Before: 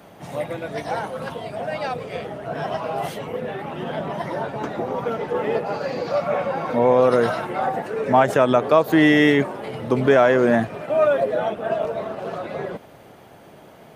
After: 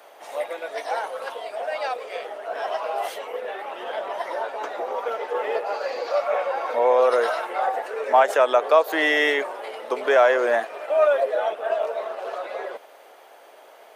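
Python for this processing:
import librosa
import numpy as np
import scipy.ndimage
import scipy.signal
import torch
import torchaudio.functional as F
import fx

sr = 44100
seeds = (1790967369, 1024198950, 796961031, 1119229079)

y = scipy.signal.sosfilt(scipy.signal.butter(4, 470.0, 'highpass', fs=sr, output='sos'), x)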